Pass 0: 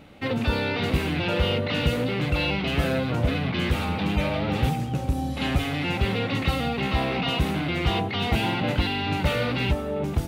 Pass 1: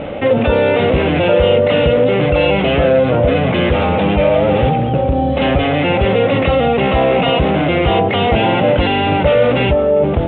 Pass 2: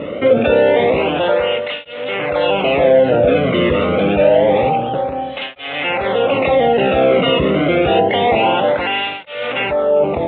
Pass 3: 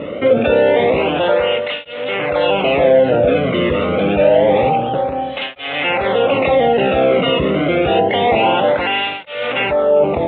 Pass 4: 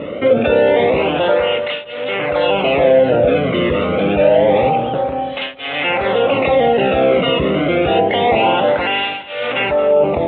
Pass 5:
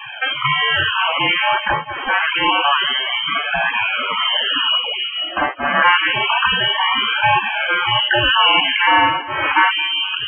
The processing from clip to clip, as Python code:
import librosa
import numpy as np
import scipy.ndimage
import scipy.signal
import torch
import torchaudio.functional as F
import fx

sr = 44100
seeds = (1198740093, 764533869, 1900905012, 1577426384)

y1 = scipy.signal.sosfilt(scipy.signal.butter(12, 3500.0, 'lowpass', fs=sr, output='sos'), x)
y1 = fx.peak_eq(y1, sr, hz=550.0, db=13.0, octaves=0.84)
y1 = fx.env_flatten(y1, sr, amount_pct=50)
y1 = F.gain(torch.from_numpy(y1), 4.5).numpy()
y2 = fx.flanger_cancel(y1, sr, hz=0.27, depth_ms=1.3)
y2 = F.gain(torch.from_numpy(y2), 2.0).numpy()
y3 = fx.rider(y2, sr, range_db=3, speed_s=2.0)
y4 = fx.echo_feedback(y3, sr, ms=224, feedback_pct=34, wet_db=-17.5)
y5 = fx.spec_topn(y4, sr, count=64)
y5 = scipy.signal.sosfilt(scipy.signal.butter(4, 970.0, 'highpass', fs=sr, output='sos'), y5)
y5 = fx.freq_invert(y5, sr, carrier_hz=3700)
y5 = F.gain(torch.from_numpy(y5), 7.5).numpy()